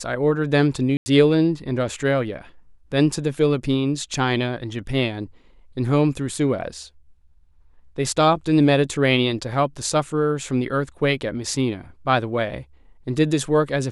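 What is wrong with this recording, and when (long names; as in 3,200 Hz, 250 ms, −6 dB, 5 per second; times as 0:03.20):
0:00.97–0:01.06: drop-out 90 ms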